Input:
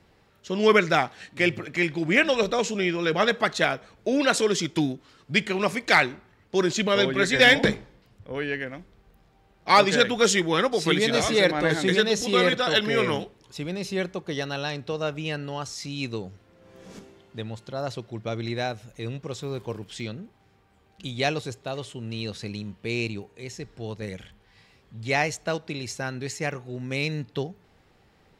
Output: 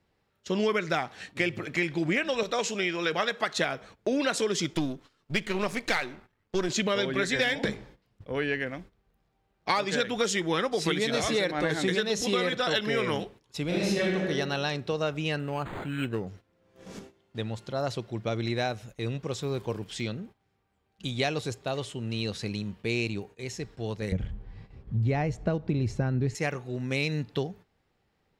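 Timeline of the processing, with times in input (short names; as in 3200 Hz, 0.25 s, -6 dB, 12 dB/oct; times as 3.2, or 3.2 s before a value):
2.43–3.57 low shelf 400 Hz -9 dB
4.73–6.69 half-wave gain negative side -7 dB
13.65–14.15 reverb throw, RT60 1.2 s, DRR -6.5 dB
15.39–16.27 decimation joined by straight lines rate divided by 8×
24.12–26.35 tilt -4.5 dB/oct
whole clip: gate -47 dBFS, range -14 dB; compressor 10:1, threshold -24 dBFS; gain +1 dB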